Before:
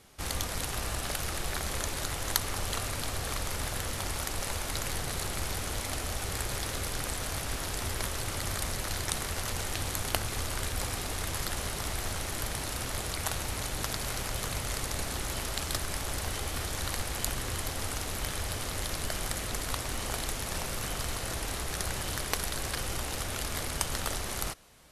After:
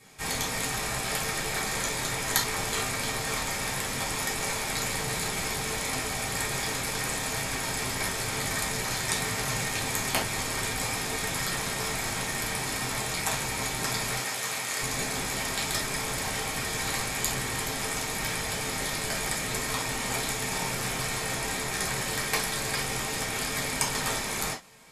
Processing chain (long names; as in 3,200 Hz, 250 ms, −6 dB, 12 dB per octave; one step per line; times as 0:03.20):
0:09.14–0:09.64: frequency shifter +25 Hz
0:14.19–0:14.81: high-pass filter 560 Hz 6 dB per octave
convolution reverb, pre-delay 3 ms, DRR −7.5 dB